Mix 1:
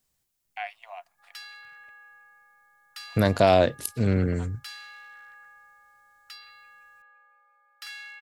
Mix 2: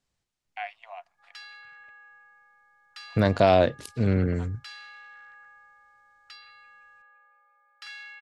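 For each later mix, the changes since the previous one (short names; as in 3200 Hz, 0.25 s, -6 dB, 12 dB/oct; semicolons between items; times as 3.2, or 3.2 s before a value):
master: add air absorption 86 m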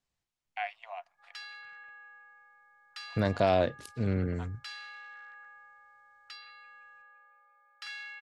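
second voice -6.5 dB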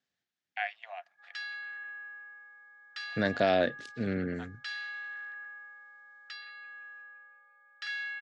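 master: add speaker cabinet 170–6900 Hz, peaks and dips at 250 Hz +4 dB, 1000 Hz -9 dB, 1700 Hz +9 dB, 3500 Hz +4 dB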